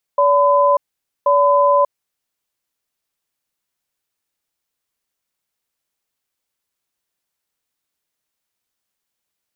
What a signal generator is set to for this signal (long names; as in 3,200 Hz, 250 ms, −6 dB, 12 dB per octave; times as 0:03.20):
tone pair in a cadence 573 Hz, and 1,010 Hz, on 0.59 s, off 0.49 s, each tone −13 dBFS 1.98 s